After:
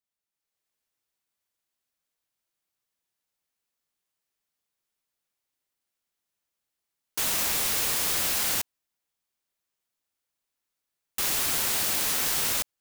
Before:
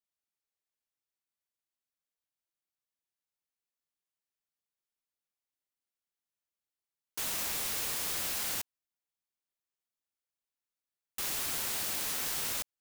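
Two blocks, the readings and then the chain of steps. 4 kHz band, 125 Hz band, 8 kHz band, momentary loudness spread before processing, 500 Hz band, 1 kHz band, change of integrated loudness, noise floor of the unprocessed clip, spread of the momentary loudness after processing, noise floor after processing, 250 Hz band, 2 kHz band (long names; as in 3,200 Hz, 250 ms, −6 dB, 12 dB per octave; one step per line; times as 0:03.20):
+8.0 dB, +8.0 dB, +8.0 dB, 5 LU, +8.0 dB, +8.0 dB, +8.0 dB, below −85 dBFS, 5 LU, −85 dBFS, +8.0 dB, +8.0 dB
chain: automatic gain control gain up to 8 dB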